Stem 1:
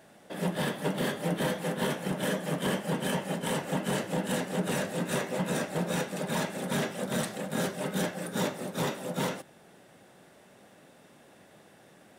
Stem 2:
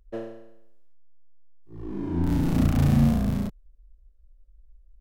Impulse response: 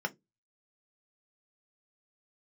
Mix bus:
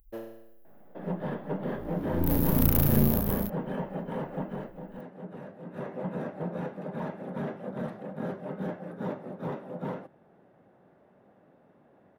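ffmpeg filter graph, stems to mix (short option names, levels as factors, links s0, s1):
-filter_complex "[0:a]lowpass=1100,adelay=650,volume=2.11,afade=t=out:st=4.34:d=0.42:silence=0.334965,afade=t=in:st=5.65:d=0.28:silence=0.375837[s0];[1:a]aeval=exprs='0.335*(cos(1*acos(clip(val(0)/0.335,-1,1)))-cos(1*PI/2))+0.075*(cos(4*acos(clip(val(0)/0.335,-1,1)))-cos(4*PI/2))':c=same,volume=0.562[s1];[s0][s1]amix=inputs=2:normalize=0,highshelf=f=7400:g=7,aexciter=amount=4.1:drive=9.7:freq=11000"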